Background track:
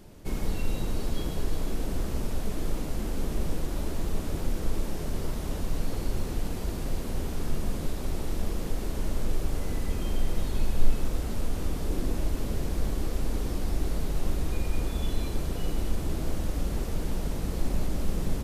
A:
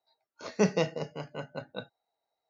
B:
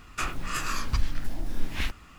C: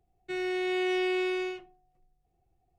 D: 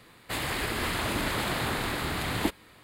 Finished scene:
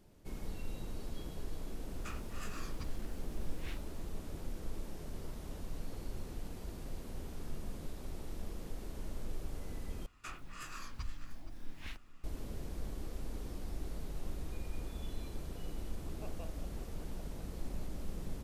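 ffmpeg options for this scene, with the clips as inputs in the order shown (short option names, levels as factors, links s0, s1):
-filter_complex "[2:a]asplit=2[s0][s1];[0:a]volume=0.224[s2];[s0]aeval=exprs='val(0)*gte(abs(val(0)),0.00316)':c=same[s3];[s1]aecho=1:1:470:0.178[s4];[1:a]asplit=3[s5][s6][s7];[s5]bandpass=f=730:t=q:w=8,volume=1[s8];[s6]bandpass=f=1090:t=q:w=8,volume=0.501[s9];[s7]bandpass=f=2440:t=q:w=8,volume=0.355[s10];[s8][s9][s10]amix=inputs=3:normalize=0[s11];[s2]asplit=2[s12][s13];[s12]atrim=end=10.064[s14];[s4]atrim=end=2.18,asetpts=PTS-STARTPTS,volume=0.158[s15];[s13]atrim=start=12.236[s16];[s3]atrim=end=2.18,asetpts=PTS-STARTPTS,volume=0.141,afade=t=in:d=0.004:c=hsin,afade=t=out:st=2.176:d=0.004:c=hsin,adelay=1870[s17];[s11]atrim=end=2.49,asetpts=PTS-STARTPTS,volume=0.251,afade=t=in:d=0.004:c=hsin,afade=t=out:st=2.486:d=0.004:c=hsin,adelay=15620[s18];[s14][s15]acrossfade=d=0.004:c1=hsin:c2=hsin[s19];[s19][s16]acrossfade=d=0.004:c1=hsin:c2=hsin[s20];[s20][s17][s18]amix=inputs=3:normalize=0"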